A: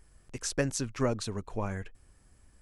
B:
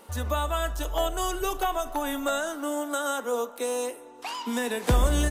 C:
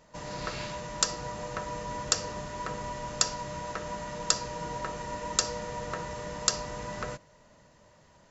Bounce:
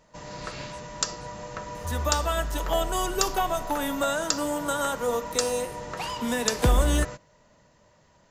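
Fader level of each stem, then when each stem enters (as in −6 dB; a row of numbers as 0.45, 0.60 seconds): −20.0, +1.0, −1.0 decibels; 0.00, 1.75, 0.00 seconds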